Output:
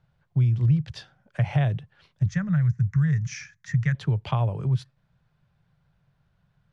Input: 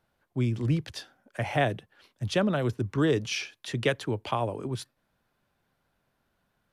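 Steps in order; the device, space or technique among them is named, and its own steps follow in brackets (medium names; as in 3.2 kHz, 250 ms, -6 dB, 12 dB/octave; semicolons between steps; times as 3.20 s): jukebox (low-pass 5.5 kHz 12 dB/octave; resonant low shelf 200 Hz +9.5 dB, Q 3; compression 3:1, threshold -20 dBFS, peak gain reduction 10 dB); 2.26–3.95 s: FFT filter 180 Hz 0 dB, 310 Hz -21 dB, 990 Hz -10 dB, 1.9 kHz +6 dB, 2.9 kHz -17 dB, 4.3 kHz -12 dB, 6.5 kHz +6 dB, 9.6 kHz -13 dB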